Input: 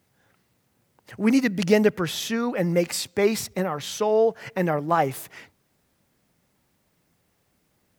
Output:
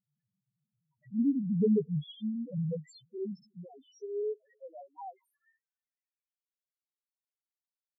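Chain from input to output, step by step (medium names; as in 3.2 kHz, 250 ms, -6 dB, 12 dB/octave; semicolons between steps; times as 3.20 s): Doppler pass-by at 1.74 s, 21 m/s, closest 10 m; high-pass sweep 140 Hz -> 3.9 kHz, 3.10–6.74 s; loudest bins only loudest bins 1; trim -2.5 dB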